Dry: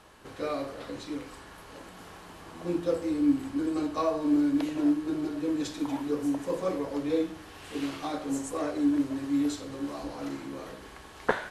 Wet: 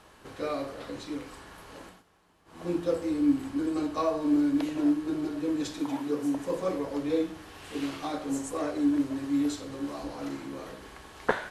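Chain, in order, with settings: 1.85–2.63 s: dip -18 dB, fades 0.18 s; 5.81–6.35 s: high-pass 110 Hz

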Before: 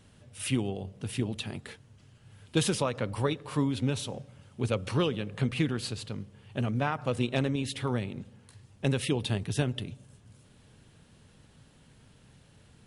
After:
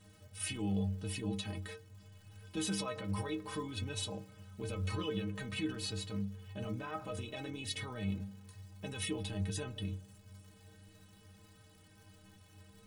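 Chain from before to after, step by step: peak limiter -25.5 dBFS, peak gain reduction 11.5 dB; crackle 190 per s -49 dBFS; inharmonic resonator 93 Hz, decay 0.42 s, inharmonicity 0.03; trim +8.5 dB

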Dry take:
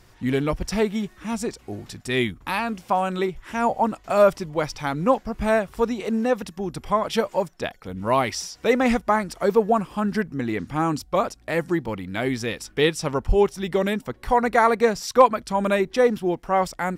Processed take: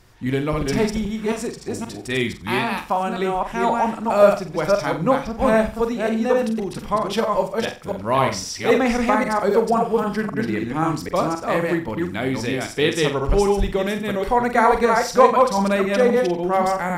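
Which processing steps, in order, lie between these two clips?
chunks repeated in reverse 264 ms, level -2 dB; flutter echo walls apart 7.8 m, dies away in 0.32 s

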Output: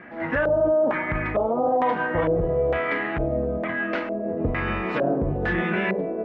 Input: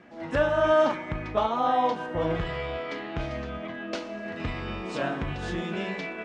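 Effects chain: LFO low-pass square 1.1 Hz 520–1900 Hz; peak limiter -20.5 dBFS, peak gain reduction 11 dB; trim +6.5 dB

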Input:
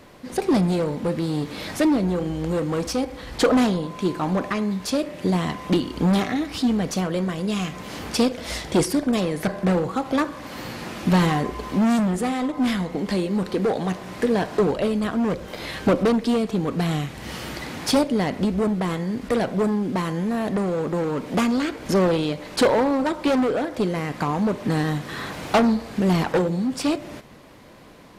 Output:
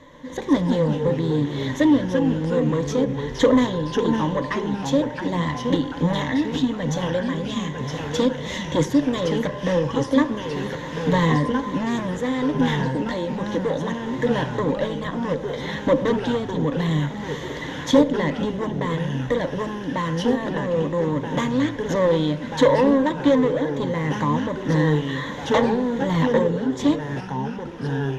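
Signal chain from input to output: rippled EQ curve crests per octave 1.1, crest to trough 15 dB; ever faster or slower copies 118 ms, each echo -2 st, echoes 3, each echo -6 dB; distance through air 77 m; trim -2.5 dB

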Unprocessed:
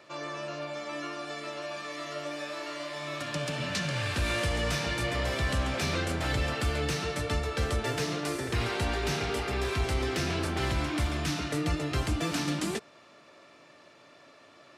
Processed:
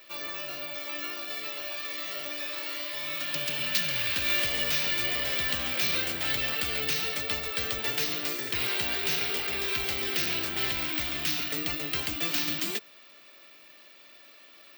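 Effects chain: frequency weighting D; careless resampling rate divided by 2×, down none, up zero stuff; trim -5.5 dB

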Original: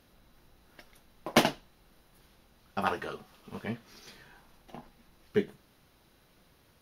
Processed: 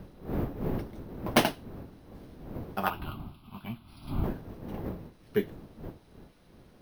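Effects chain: wind noise 300 Hz -38 dBFS; 2.90–4.24 s: static phaser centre 1.8 kHz, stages 6; careless resampling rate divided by 3×, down filtered, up hold

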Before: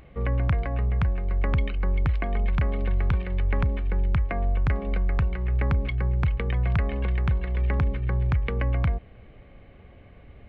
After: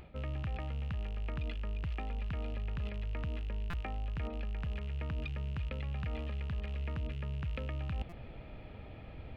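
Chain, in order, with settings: rattle on loud lows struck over -28 dBFS, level -30 dBFS; reverse; compression 8:1, threshold -36 dBFS, peak gain reduction 16.5 dB; reverse; tape speed +12%; buffer glitch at 3.70/8.09 s, samples 256, times 5; trim +1 dB

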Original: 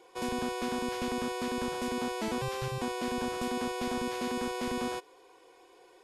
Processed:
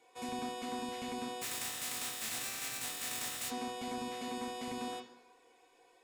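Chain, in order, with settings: 1.41–3.49 s: spectral contrast reduction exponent 0.13; reverberation RT60 0.95 s, pre-delay 3 ms, DRR -0.5 dB; trim -7 dB

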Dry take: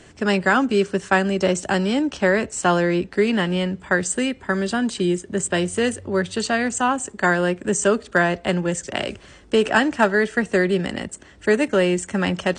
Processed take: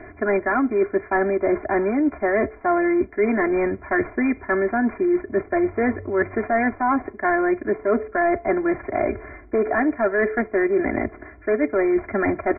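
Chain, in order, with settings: CVSD coder 32 kbps; brick-wall FIR low-pass 2.4 kHz; peaking EQ 620 Hz +4.5 dB 0.43 oct; comb 2.9 ms, depth 92%; de-hum 433.1 Hz, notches 2; reverse; compression, threshold -22 dBFS, peak gain reduction 13 dB; reverse; trim +4.5 dB

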